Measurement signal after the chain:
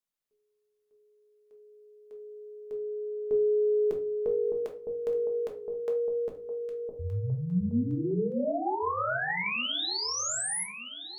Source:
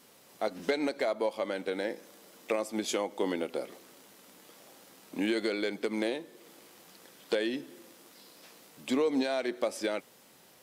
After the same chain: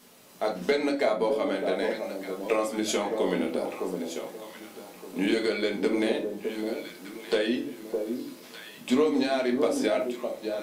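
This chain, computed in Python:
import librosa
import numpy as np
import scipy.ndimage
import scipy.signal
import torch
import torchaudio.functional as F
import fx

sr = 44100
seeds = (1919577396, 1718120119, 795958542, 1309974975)

y = fx.echo_alternate(x, sr, ms=610, hz=910.0, feedback_pct=50, wet_db=-4.5)
y = fx.room_shoebox(y, sr, seeds[0], volume_m3=220.0, walls='furnished', distance_m=1.4)
y = F.gain(torch.from_numpy(y), 2.0).numpy()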